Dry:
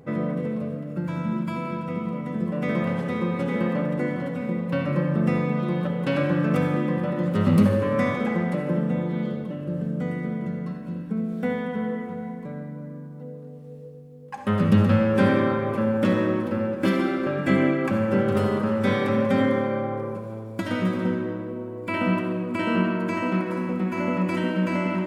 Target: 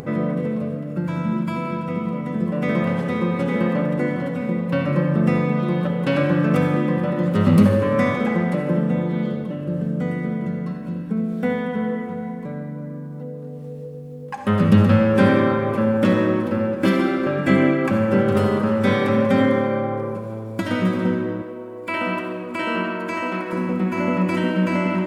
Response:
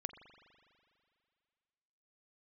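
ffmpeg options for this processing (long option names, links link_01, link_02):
-filter_complex "[0:a]acompressor=mode=upward:threshold=-31dB:ratio=2.5,asettb=1/sr,asplit=3[link_01][link_02][link_03];[link_01]atrim=end=21.424[link_04];[link_02]atrim=start=21.42:end=23.53,asetpts=PTS-STARTPTS,afade=type=in:duration=0.004:curve=qsin,afade=type=out:start_time=2.106:duration=0.004:curve=qsin,equalizer=frequency=130:width=0.64:gain=-13.5[link_05];[link_03]atrim=start=23.526[link_06];[link_04][link_05]acrossfade=duration=0.004:curve1=hsin:curve2=qsin[link_07];[link_07][link_06]acrossfade=duration=0.004:curve1=qsin:curve2=hsin,volume=4dB"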